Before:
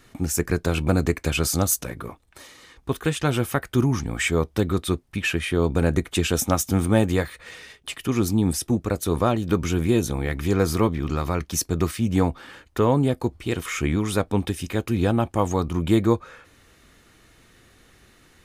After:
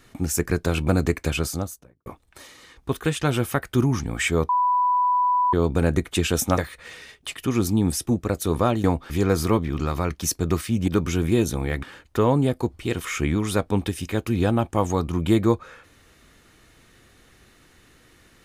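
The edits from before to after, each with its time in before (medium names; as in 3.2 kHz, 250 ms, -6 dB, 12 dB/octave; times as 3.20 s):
1.19–2.06 s: studio fade out
4.49–5.53 s: bleep 991 Hz -17 dBFS
6.58–7.19 s: delete
9.45–10.40 s: swap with 12.18–12.44 s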